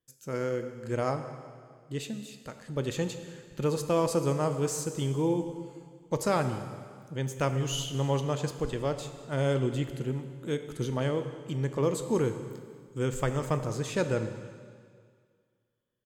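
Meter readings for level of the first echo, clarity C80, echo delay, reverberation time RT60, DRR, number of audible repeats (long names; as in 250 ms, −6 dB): −20.0 dB, 10.0 dB, 197 ms, 2.0 s, 8.0 dB, 1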